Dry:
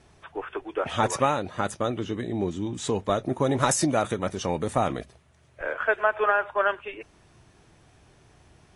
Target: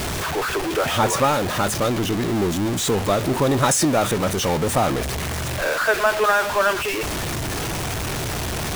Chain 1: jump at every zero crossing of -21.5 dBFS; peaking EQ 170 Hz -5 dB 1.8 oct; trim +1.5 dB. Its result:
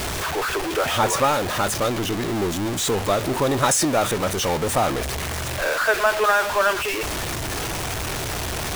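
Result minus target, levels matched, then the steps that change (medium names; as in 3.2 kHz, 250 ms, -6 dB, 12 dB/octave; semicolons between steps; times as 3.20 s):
125 Hz band -3.0 dB
remove: peaking EQ 170 Hz -5 dB 1.8 oct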